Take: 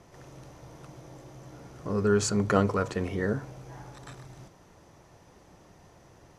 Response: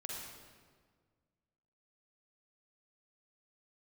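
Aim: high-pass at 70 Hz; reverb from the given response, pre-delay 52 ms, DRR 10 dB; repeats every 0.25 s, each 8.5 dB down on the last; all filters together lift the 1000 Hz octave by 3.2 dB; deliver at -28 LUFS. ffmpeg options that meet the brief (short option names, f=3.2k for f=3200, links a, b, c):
-filter_complex "[0:a]highpass=70,equalizer=f=1k:t=o:g=4.5,aecho=1:1:250|500|750|1000:0.376|0.143|0.0543|0.0206,asplit=2[a][b];[1:a]atrim=start_sample=2205,adelay=52[c];[b][c]afir=irnorm=-1:irlink=0,volume=-9.5dB[d];[a][d]amix=inputs=2:normalize=0,volume=-2dB"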